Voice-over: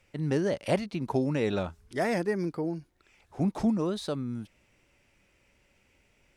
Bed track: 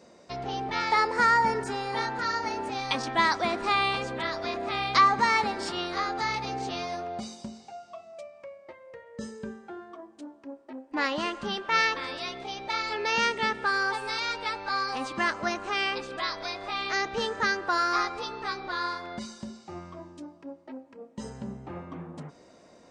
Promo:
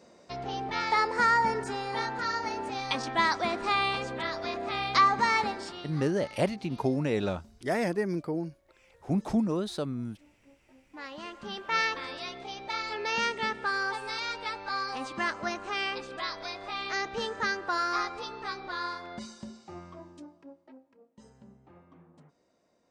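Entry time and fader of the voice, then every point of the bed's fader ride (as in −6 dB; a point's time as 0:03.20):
5.70 s, −0.5 dB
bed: 0:05.49 −2 dB
0:06.07 −18.5 dB
0:10.80 −18.5 dB
0:11.71 −3.5 dB
0:20.14 −3.5 dB
0:21.18 −16.5 dB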